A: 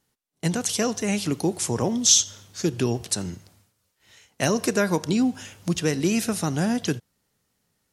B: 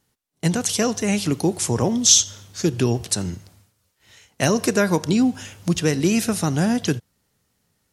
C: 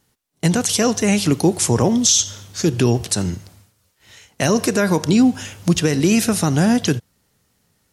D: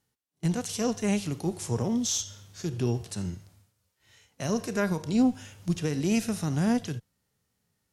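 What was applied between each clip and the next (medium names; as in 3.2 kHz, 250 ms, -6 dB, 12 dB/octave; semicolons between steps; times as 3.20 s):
peaking EQ 81 Hz +4 dB 1.5 oct; trim +3 dB
peak limiter -10.5 dBFS, peak gain reduction 9 dB; trim +5 dB
harmonic-percussive split percussive -10 dB; Chebyshev shaper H 2 -19 dB, 3 -27 dB, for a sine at -6 dBFS; trim -8.5 dB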